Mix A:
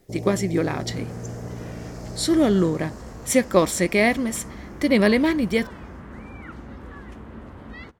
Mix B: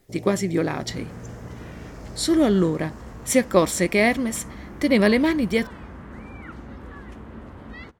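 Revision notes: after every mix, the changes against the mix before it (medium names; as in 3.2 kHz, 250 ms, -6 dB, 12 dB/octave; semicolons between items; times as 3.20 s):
first sound -6.5 dB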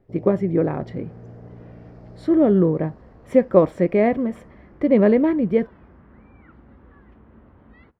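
speech: add ten-band graphic EQ 125 Hz +6 dB, 500 Hz +6 dB, 2 kHz -4 dB, 4 kHz -10 dB; second sound -9.5 dB; master: add distance through air 400 m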